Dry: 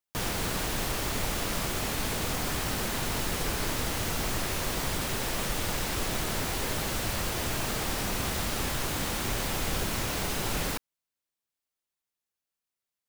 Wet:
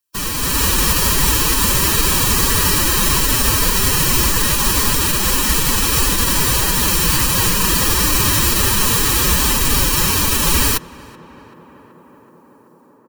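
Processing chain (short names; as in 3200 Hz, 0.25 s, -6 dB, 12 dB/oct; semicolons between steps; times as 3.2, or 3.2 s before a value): high shelf 4800 Hz +8 dB; comb 1.1 ms, depth 83%; in parallel at -2 dB: limiter -18.5 dBFS, peak gain reduction 7 dB; on the sum: AGC gain up to 11.5 dB; formant-preserving pitch shift +7.5 st; tape echo 0.38 s, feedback 90%, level -18 dB, low-pass 1700 Hz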